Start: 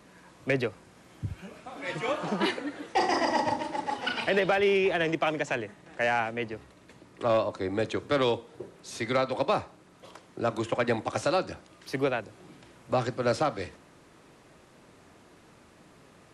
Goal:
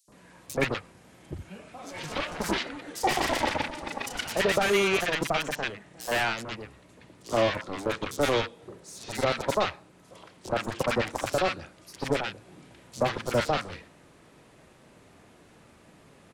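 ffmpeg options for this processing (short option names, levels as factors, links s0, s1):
-filter_complex "[0:a]aeval=exprs='0.15*(cos(1*acos(clip(val(0)/0.15,-1,1)))-cos(1*PI/2))+0.0335*(cos(3*acos(clip(val(0)/0.15,-1,1)))-cos(3*PI/2))+0.0237*(cos(7*acos(clip(val(0)/0.15,-1,1)))-cos(7*PI/2))':c=same,equalizer=f=340:w=1.7:g=-2.5,acrossover=split=1200|5200[s0][s1][s2];[s0]adelay=80[s3];[s1]adelay=120[s4];[s3][s4][s2]amix=inputs=3:normalize=0,volume=1.58"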